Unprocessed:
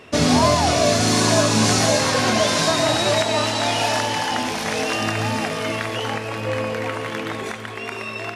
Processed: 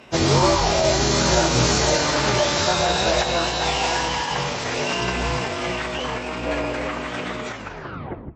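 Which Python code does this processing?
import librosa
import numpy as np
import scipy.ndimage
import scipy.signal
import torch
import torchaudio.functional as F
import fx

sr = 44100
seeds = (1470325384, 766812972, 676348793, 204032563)

y = fx.tape_stop_end(x, sr, length_s=0.87)
y = scipy.signal.sosfilt(scipy.signal.butter(2, 75.0, 'highpass', fs=sr, output='sos'), y)
y = fx.echo_feedback(y, sr, ms=166, feedback_pct=16, wet_db=-18.0)
y = fx.pitch_keep_formants(y, sr, semitones=-10.0)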